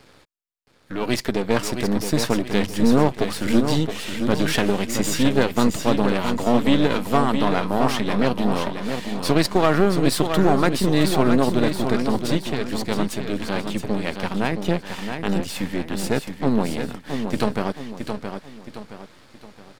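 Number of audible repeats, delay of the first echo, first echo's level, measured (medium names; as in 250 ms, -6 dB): 3, 670 ms, -7.0 dB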